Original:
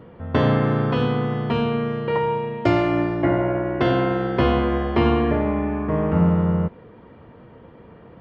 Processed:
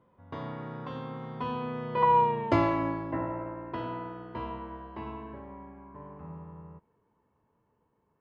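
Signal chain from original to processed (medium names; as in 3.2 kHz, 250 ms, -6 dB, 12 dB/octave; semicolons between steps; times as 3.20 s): Doppler pass-by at 2.33 s, 22 m/s, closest 6.9 m; peaking EQ 990 Hz +12.5 dB 0.28 oct; trim -5 dB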